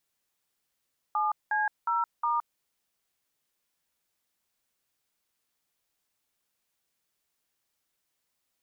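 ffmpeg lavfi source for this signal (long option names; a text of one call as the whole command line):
ffmpeg -f lavfi -i "aevalsrc='0.0447*clip(min(mod(t,0.361),0.168-mod(t,0.361))/0.002,0,1)*(eq(floor(t/0.361),0)*(sin(2*PI*852*mod(t,0.361))+sin(2*PI*1209*mod(t,0.361)))+eq(floor(t/0.361),1)*(sin(2*PI*852*mod(t,0.361))+sin(2*PI*1633*mod(t,0.361)))+eq(floor(t/0.361),2)*(sin(2*PI*941*mod(t,0.361))+sin(2*PI*1336*mod(t,0.361)))+eq(floor(t/0.361),3)*(sin(2*PI*941*mod(t,0.361))+sin(2*PI*1209*mod(t,0.361))))':duration=1.444:sample_rate=44100" out.wav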